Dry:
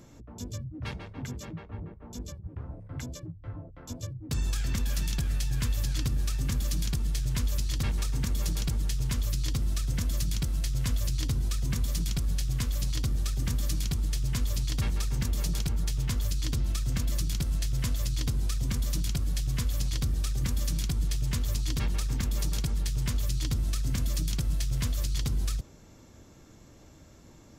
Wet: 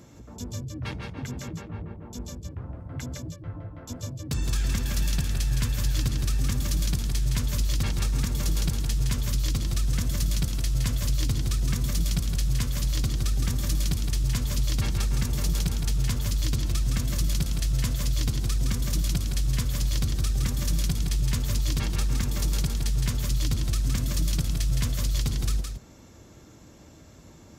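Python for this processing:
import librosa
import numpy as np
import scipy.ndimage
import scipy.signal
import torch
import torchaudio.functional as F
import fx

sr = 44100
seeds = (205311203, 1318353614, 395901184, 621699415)

y = scipy.signal.sosfilt(scipy.signal.butter(2, 43.0, 'highpass', fs=sr, output='sos'), x)
y = y + 10.0 ** (-5.0 / 20.0) * np.pad(y, (int(165 * sr / 1000.0), 0))[:len(y)]
y = F.gain(torch.from_numpy(y), 2.5).numpy()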